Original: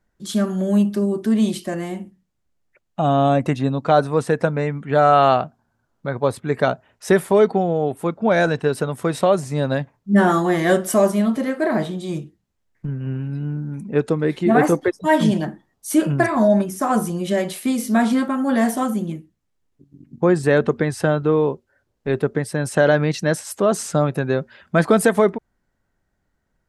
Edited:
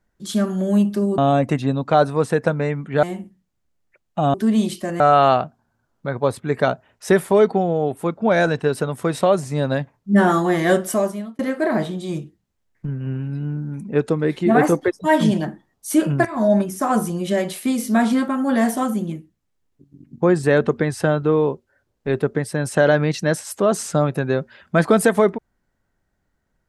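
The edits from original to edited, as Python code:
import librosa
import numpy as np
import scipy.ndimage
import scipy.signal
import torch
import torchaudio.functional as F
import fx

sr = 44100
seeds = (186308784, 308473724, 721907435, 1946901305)

y = fx.edit(x, sr, fx.swap(start_s=1.18, length_s=0.66, other_s=3.15, other_length_s=1.85),
    fx.fade_out_span(start_s=10.77, length_s=0.62),
    fx.fade_in_from(start_s=16.25, length_s=0.28, floor_db=-13.5), tone=tone)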